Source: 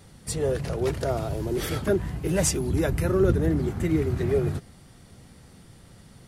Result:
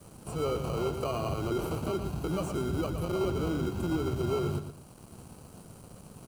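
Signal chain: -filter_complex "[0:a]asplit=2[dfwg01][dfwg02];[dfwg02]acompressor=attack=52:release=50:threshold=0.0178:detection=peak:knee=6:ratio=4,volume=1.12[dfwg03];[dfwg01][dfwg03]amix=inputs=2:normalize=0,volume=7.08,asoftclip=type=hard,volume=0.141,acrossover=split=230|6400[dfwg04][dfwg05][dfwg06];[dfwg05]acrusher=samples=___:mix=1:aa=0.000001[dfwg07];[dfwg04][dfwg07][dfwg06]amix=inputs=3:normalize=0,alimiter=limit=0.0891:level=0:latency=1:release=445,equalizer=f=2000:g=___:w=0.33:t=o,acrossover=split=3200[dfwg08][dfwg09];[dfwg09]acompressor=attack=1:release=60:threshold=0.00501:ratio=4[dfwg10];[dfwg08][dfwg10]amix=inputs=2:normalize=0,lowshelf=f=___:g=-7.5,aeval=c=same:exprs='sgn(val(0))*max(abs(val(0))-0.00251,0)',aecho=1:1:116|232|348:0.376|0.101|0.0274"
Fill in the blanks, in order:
25, -14.5, 110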